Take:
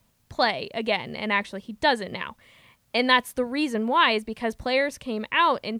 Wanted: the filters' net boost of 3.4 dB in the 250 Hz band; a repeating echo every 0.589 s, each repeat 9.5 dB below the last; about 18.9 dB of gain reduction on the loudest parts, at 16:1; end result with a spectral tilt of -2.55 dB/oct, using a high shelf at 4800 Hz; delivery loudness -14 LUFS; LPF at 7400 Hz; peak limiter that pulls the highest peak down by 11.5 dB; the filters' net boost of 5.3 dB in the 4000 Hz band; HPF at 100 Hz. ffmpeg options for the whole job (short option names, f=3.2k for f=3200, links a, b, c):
-af "highpass=100,lowpass=7.4k,equalizer=f=250:t=o:g=4,equalizer=f=4k:t=o:g=8.5,highshelf=f=4.8k:g=-3.5,acompressor=threshold=-32dB:ratio=16,alimiter=level_in=5dB:limit=-24dB:level=0:latency=1,volume=-5dB,aecho=1:1:589|1178|1767|2356:0.335|0.111|0.0365|0.012,volume=25.5dB"